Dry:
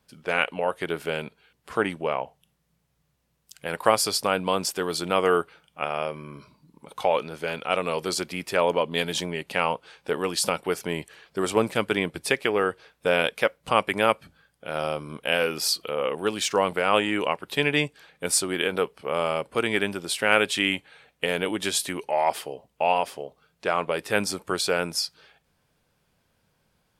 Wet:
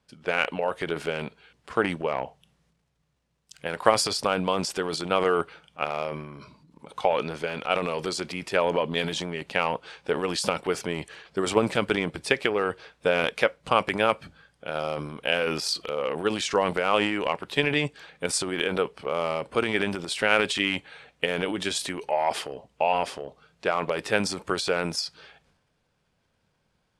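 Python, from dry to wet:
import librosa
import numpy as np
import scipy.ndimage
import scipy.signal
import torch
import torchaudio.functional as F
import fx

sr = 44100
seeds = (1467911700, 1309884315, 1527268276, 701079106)

y = scipy.signal.sosfilt(scipy.signal.bessel(4, 7200.0, 'lowpass', norm='mag', fs=sr, output='sos'), x)
y = fx.transient(y, sr, attack_db=5, sustain_db=9)
y = y * 10.0 ** (-3.5 / 20.0)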